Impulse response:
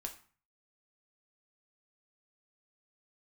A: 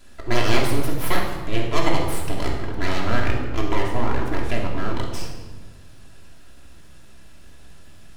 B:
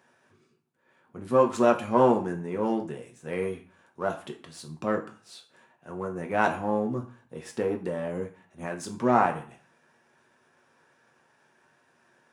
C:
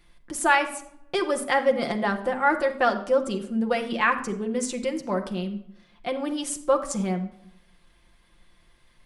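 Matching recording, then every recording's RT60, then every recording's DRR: B; 1.4, 0.40, 0.70 s; -2.0, 3.0, 4.0 dB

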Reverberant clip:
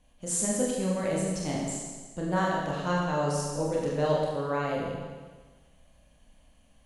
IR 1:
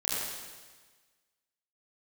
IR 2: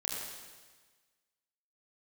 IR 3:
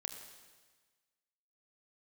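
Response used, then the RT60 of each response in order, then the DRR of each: 2; 1.4, 1.4, 1.4 s; -9.0, -4.5, 4.0 dB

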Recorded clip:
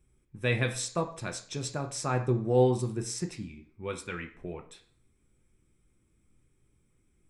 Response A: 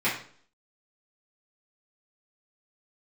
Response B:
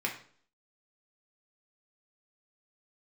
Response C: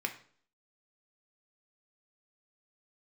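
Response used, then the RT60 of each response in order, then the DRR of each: C; 0.50, 0.50, 0.50 s; -11.0, -1.0, 4.0 dB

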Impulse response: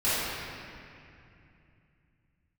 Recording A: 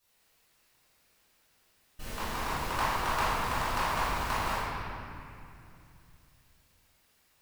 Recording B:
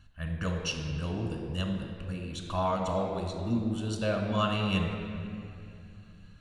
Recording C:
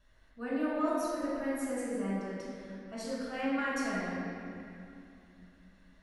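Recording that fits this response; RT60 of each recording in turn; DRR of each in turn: A; 2.6, 2.6, 2.6 s; -14.5, 1.5, -8.5 dB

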